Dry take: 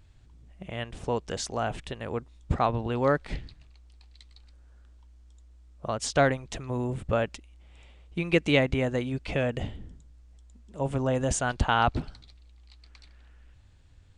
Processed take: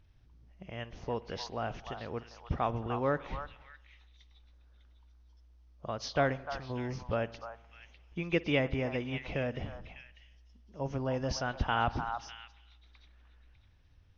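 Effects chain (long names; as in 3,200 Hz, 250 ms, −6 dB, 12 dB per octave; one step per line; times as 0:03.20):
hearing-aid frequency compression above 2,900 Hz 1.5 to 1
echo through a band-pass that steps 300 ms, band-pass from 1,000 Hz, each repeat 1.4 octaves, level −5 dB
spring reverb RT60 1.1 s, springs 52 ms, chirp 60 ms, DRR 18.5 dB
level −6.5 dB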